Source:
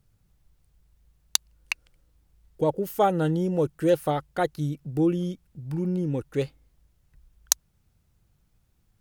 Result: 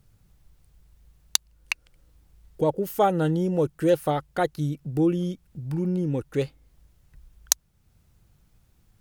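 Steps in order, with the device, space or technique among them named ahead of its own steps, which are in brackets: parallel compression (in parallel at -0.5 dB: compressor, threshold -42 dBFS, peak gain reduction 25 dB)

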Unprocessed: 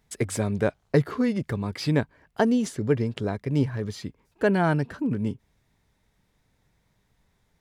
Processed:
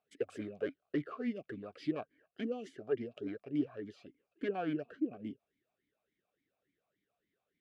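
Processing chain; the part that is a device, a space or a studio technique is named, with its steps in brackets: talk box (tube stage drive 19 dB, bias 0.55; vowel sweep a-i 3.5 Hz); gain +2 dB

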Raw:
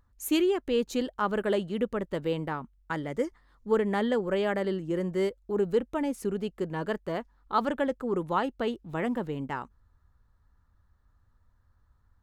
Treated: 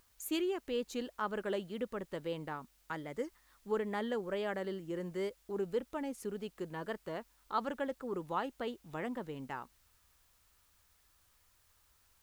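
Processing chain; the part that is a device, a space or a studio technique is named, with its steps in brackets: noise-reduction cassette on a plain deck (mismatched tape noise reduction encoder only; wow and flutter; white noise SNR 33 dB); low shelf 330 Hz -4.5 dB; gain -7.5 dB

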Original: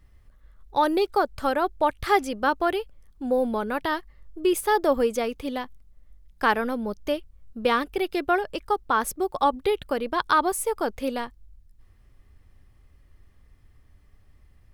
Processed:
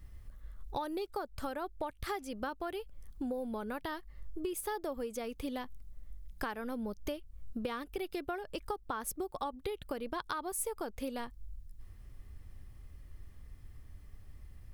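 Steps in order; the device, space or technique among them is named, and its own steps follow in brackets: ASMR close-microphone chain (low shelf 230 Hz +6 dB; compressor 10:1, threshold -34 dBFS, peak gain reduction 20 dB; high shelf 6400 Hz +7.5 dB); gain -1 dB

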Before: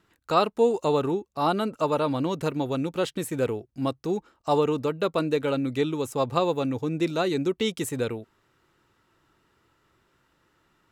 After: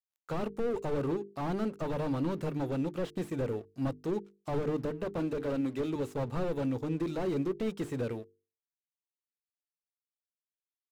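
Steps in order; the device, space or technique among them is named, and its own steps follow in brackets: 4.85–5.96 HPF 150 Hz 24 dB/oct; early transistor amplifier (crossover distortion -53.5 dBFS; slew limiter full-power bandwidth 22 Hz); notches 50/100/150/200/250/300/350/400/450 Hz; gain -3 dB

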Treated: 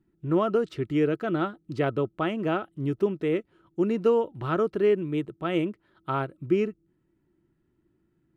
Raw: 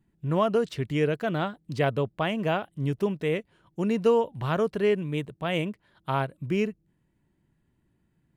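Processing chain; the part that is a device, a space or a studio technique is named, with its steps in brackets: inside a helmet (high shelf 5900 Hz -8 dB; small resonant body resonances 340/1300 Hz, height 13 dB, ringing for 40 ms); gain -3.5 dB

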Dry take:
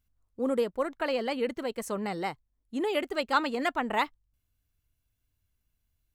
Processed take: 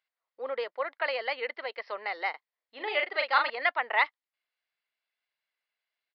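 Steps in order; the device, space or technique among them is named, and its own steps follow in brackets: musical greeting card (downsampling 11025 Hz; HPF 550 Hz 24 dB/oct; bell 2000 Hz +9 dB 0.42 oct); 2.3–3.5 doubler 40 ms -5 dB

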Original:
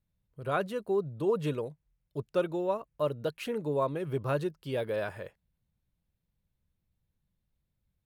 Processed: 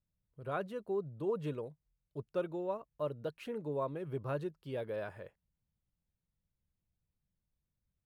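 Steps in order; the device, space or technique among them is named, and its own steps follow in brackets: behind a face mask (high shelf 2700 Hz -7 dB); gain -6.5 dB

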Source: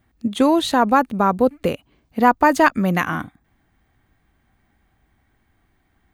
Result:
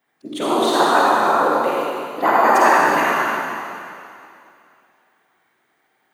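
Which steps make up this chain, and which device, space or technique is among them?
whispering ghost (whisperiser; HPF 460 Hz 12 dB/oct; reverb RT60 2.6 s, pre-delay 42 ms, DRR -6 dB); gain -3 dB

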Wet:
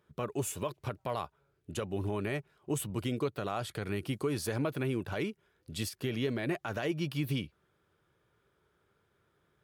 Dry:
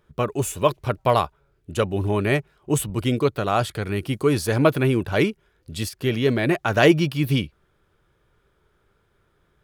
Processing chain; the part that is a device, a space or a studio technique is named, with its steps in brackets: podcast mastering chain (HPF 90 Hz 12 dB/oct; compressor 4:1, threshold -22 dBFS, peak gain reduction 10.5 dB; limiter -16 dBFS, peak gain reduction 7 dB; gain -6 dB; MP3 96 kbps 44100 Hz)

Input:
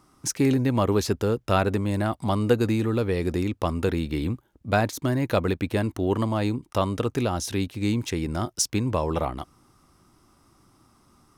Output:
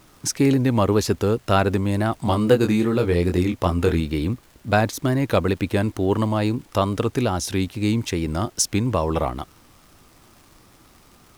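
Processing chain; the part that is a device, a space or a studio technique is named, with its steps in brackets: 2.23–4 doubler 23 ms -5.5 dB; vinyl LP (wow and flutter; crackle; pink noise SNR 33 dB); gain +3.5 dB

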